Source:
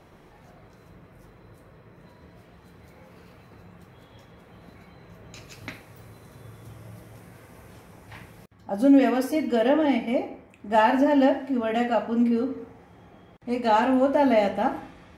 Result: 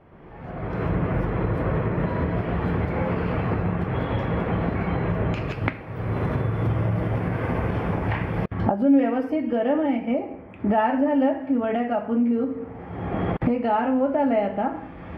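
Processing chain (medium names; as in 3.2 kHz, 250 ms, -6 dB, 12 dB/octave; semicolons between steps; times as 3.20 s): recorder AGC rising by 34 dB/s; distance through air 490 m; band-stop 3.9 kHz, Q 7.2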